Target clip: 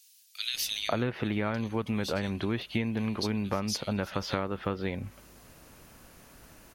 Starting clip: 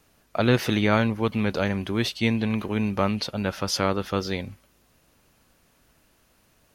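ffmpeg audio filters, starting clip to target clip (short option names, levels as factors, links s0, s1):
-filter_complex "[0:a]acrossover=split=3400[s0][s1];[s0]adelay=540[s2];[s2][s1]amix=inputs=2:normalize=0,acompressor=threshold=0.0141:ratio=6,volume=2.82"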